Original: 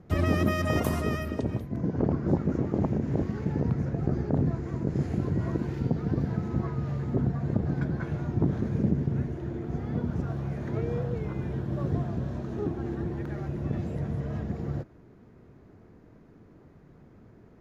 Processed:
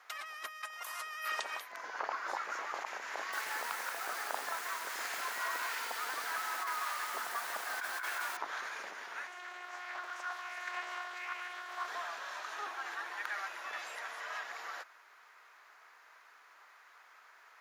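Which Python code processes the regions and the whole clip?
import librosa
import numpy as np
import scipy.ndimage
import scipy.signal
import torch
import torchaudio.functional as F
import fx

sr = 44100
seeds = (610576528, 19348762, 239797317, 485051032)

y = fx.chain(x, sr, fx.low_shelf(hz=140.0, db=11.5),
    fx.echo_crushed(ms=179, feedback_pct=35, bits=8, wet_db=-6.5), at=(3.15, 8.37))
y = fx.chain(y, sr, fx.robotise(hz=359.0),
    fx.doppler_dist(depth_ms=0.41), at=(9.27, 11.88))
y = scipy.signal.sosfilt(scipy.signal.butter(4, 1100.0, 'highpass', fs=sr, output='sos'), y)
y = fx.over_compress(y, sr, threshold_db=-47.0, ratio=-1.0)
y = y * librosa.db_to_amplitude(9.0)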